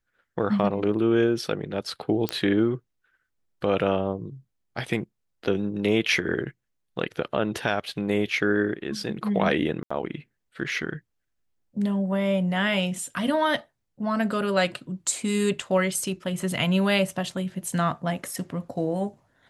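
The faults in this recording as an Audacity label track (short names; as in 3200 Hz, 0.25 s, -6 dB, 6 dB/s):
2.290000	2.290000	pop -10 dBFS
9.830000	9.900000	gap 75 ms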